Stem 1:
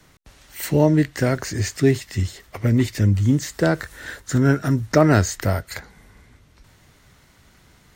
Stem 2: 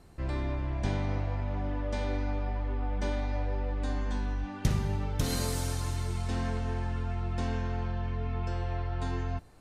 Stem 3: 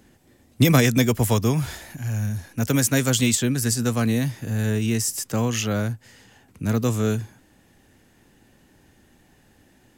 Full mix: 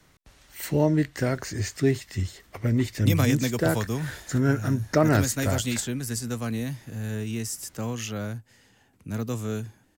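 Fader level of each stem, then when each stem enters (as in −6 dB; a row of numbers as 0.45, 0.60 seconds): −5.5 dB, muted, −8.0 dB; 0.00 s, muted, 2.45 s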